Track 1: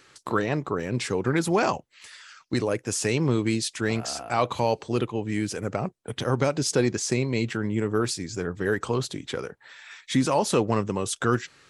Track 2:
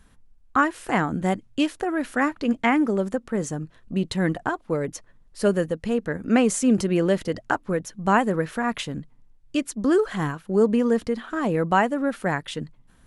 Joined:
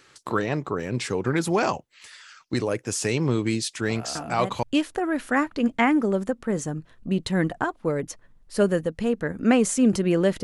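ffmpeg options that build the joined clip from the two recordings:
-filter_complex "[1:a]asplit=2[a][b];[0:a]apad=whole_dur=10.43,atrim=end=10.43,atrim=end=4.632[c];[b]atrim=start=1.478:end=7.28[d];[a]atrim=start=1:end=1.48,asetpts=PTS-STARTPTS,volume=-10dB,afade=t=in:d=0.004:c=hsin,afade=t=out:st=0.476:d=0.004:c=hsin,adelay=4150[e];[c][d]acrossfade=d=0.004:c1=hsin:c2=hsin[f];[f][e]amix=inputs=2:normalize=0"

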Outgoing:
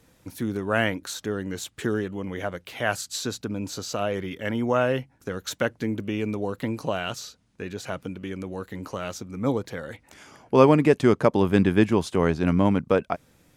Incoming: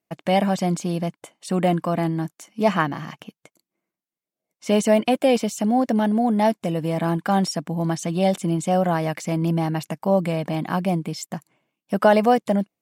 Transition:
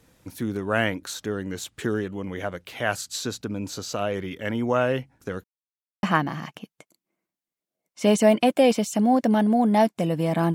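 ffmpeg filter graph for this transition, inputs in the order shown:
-filter_complex "[0:a]apad=whole_dur=10.54,atrim=end=10.54,asplit=2[a][b];[a]atrim=end=5.44,asetpts=PTS-STARTPTS,afade=t=out:st=5.436:d=0.004:c=hsin[c];[b]atrim=start=5.44:end=6.03,asetpts=PTS-STARTPTS,volume=0[d];[1:a]atrim=start=2.68:end=7.19,asetpts=PTS-STARTPTS,afade=t=in:d=0.004:c=hsin[e];[c][d][e]concat=n=3:v=0:a=1"

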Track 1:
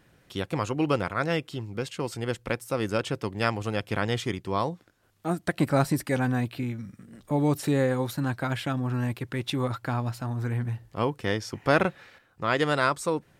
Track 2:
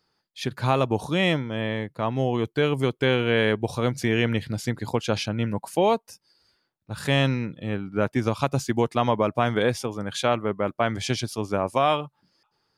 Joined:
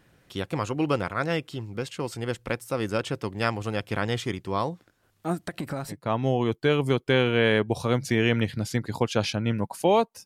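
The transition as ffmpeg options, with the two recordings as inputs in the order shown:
-filter_complex "[0:a]asettb=1/sr,asplit=3[a][b][c];[a]atrim=end=5.394[d];[b]atrim=start=5.39:end=5.96,asetpts=PTS-STARTPTS,afade=t=in:d=0.004:c=qsin,afade=t=out:st=0.566:d=0.004:c=qsin,acompressor=threshold=-27dB:ratio=12:attack=3.2:release=140:knee=1:detection=peak[e];[c]atrim=start=5.956[f];[d][e]acrossfade=d=0.004:c1=hsin:c2=qsin[g];[g][f]acrossfade=d=0.004:c1=qsin:c2=hsin,apad=whole_dur=10.25,atrim=end=10.25,atrim=end=5.96,asetpts=PTS-STARTPTS[h];[1:a]atrim=start=1.81:end=6.18,asetpts=PTS-STARTPTS[i];[h][i]acrossfade=d=0.08:c1=tri:c2=tri"

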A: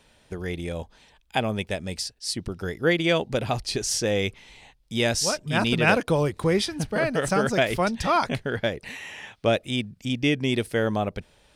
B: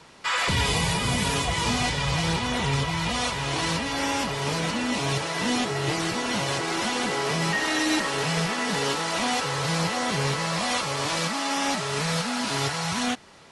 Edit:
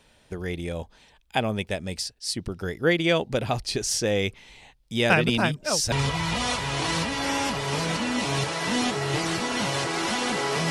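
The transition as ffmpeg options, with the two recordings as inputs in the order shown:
-filter_complex "[0:a]apad=whole_dur=10.7,atrim=end=10.7,asplit=2[a][b];[a]atrim=end=5.102[c];[b]atrim=start=5.098:end=5.922,asetpts=PTS-STARTPTS,areverse[d];[1:a]atrim=start=2.658:end=7.44[e];[c][d]acrossfade=d=0.004:c1=hsin:c2=hsin[f];[f][e]acrossfade=d=0.004:c1=hsin:c2=hsin"

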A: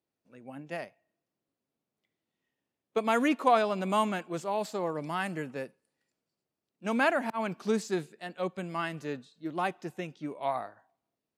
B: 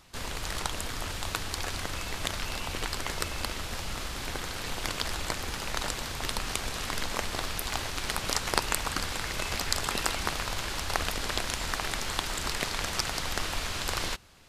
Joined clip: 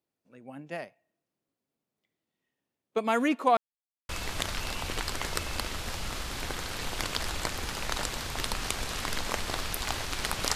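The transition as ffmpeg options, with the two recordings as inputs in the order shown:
-filter_complex "[0:a]apad=whole_dur=10.55,atrim=end=10.55,asplit=2[a][b];[a]atrim=end=3.57,asetpts=PTS-STARTPTS,afade=t=out:st=3.566:d=0.004:c=hsin[c];[b]atrim=start=3.57:end=4.09,asetpts=PTS-STARTPTS,volume=0[d];[1:a]atrim=start=1.94:end=8.4,asetpts=PTS-STARTPTS,afade=t=in:d=0.004:c=hsin[e];[c][d][e]concat=n=3:v=0:a=1"

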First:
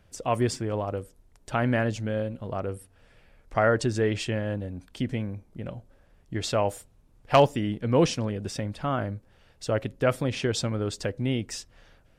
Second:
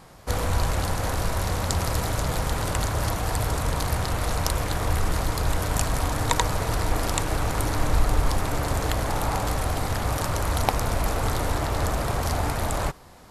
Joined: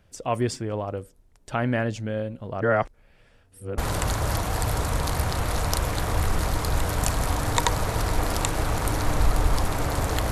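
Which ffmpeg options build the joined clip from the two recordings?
-filter_complex "[0:a]apad=whole_dur=10.31,atrim=end=10.31,asplit=2[a][b];[a]atrim=end=2.612[c];[b]atrim=start=2.608:end=3.782,asetpts=PTS-STARTPTS,areverse[d];[1:a]atrim=start=2.508:end=9.04[e];[c][d]acrossfade=d=0.004:c1=hsin:c2=hsin[f];[f][e]acrossfade=d=0.004:c1=hsin:c2=hsin"

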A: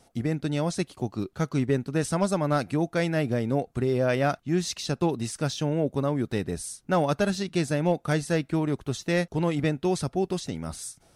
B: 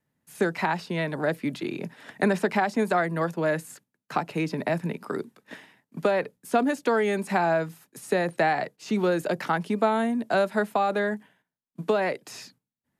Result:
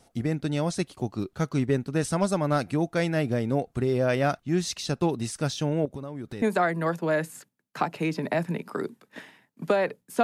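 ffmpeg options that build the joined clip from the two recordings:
-filter_complex "[0:a]asettb=1/sr,asplit=3[a][b][c];[a]atrim=end=5.854[d];[b]atrim=start=5.85:end=6.42,asetpts=PTS-STARTPTS,afade=t=in:d=0.004:c=qsin,afade=t=out:st=0.566:d=0.004:c=qsin,acompressor=threshold=-32dB:ratio=6:attack=3.2:release=140:knee=1:detection=peak[e];[c]atrim=start=6.416[f];[d][e]acrossfade=d=0.004:c1=hsin:c2=qsin[g];[g][f]acrossfade=d=0.004:c1=qsin:c2=hsin,apad=whole_dur=10.23,atrim=end=10.23,atrim=end=6.422[h];[1:a]atrim=start=2.768:end=6.58[i];[h][i]acrossfade=d=0.004:c1=hsin:c2=hsin"

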